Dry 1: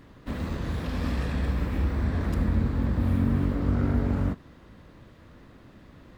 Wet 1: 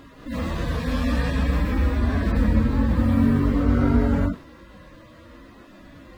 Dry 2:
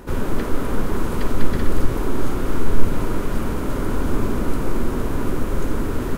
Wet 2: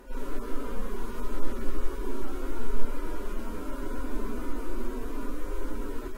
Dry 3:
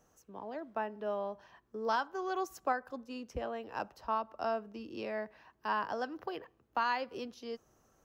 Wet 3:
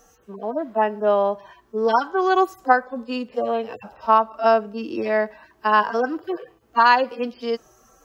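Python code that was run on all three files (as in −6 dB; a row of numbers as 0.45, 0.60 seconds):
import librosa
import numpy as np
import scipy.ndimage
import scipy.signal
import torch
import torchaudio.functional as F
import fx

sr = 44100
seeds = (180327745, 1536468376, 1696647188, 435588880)

y = fx.hpss_only(x, sr, part='harmonic')
y = fx.peak_eq(y, sr, hz=98.0, db=-8.5, octaves=1.9)
y = y * 10.0 ** (-22 / 20.0) / np.sqrt(np.mean(np.square(y)))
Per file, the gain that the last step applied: +11.0, −7.5, +18.0 decibels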